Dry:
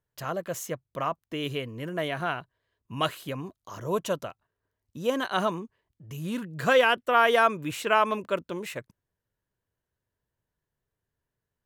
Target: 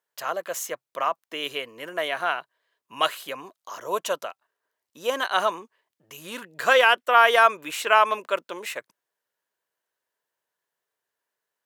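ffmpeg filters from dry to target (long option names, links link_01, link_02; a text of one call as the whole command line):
ffmpeg -i in.wav -af "highpass=600,volume=5.5dB" out.wav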